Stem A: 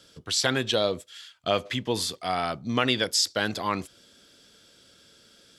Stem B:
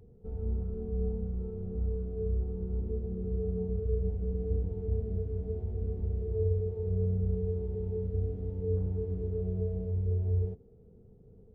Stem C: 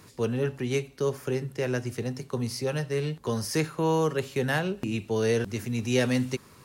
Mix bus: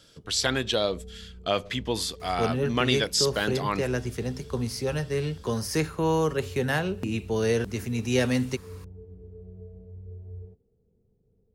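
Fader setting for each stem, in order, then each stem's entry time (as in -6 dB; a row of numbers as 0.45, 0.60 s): -1.0, -12.0, +0.5 dB; 0.00, 0.00, 2.20 s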